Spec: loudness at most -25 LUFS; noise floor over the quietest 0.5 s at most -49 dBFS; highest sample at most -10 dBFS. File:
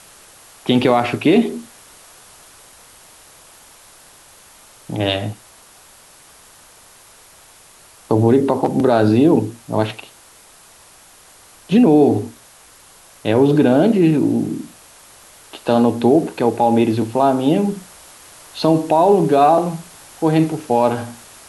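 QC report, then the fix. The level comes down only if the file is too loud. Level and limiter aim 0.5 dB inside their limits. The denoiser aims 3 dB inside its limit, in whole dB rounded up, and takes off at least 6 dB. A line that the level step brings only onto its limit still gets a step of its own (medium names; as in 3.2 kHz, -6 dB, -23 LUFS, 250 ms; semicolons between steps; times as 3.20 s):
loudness -16.0 LUFS: fail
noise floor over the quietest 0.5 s -46 dBFS: fail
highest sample -4.0 dBFS: fail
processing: trim -9.5 dB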